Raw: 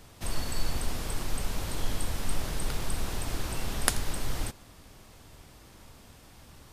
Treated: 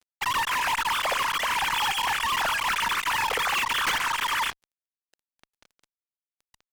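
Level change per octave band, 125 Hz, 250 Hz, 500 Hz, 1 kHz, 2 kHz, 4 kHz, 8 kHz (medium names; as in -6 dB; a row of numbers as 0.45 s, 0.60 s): -12.5 dB, -6.5 dB, +3.0 dB, +17.0 dB, +16.0 dB, +12.0 dB, +2.5 dB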